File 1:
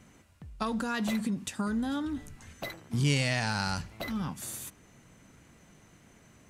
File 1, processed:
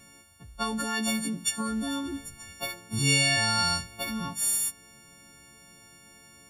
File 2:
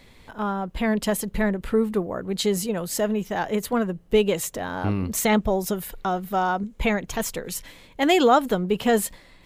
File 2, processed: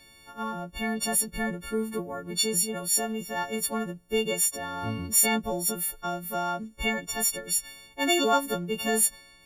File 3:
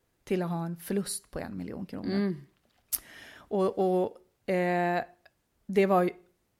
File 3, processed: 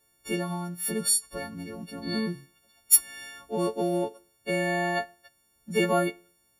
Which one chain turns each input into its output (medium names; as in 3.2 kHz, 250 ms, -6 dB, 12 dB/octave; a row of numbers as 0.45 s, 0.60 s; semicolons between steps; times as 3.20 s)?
partials quantised in pitch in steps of 4 st; normalise loudness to -27 LUFS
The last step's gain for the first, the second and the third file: 0.0 dB, -7.5 dB, -1.0 dB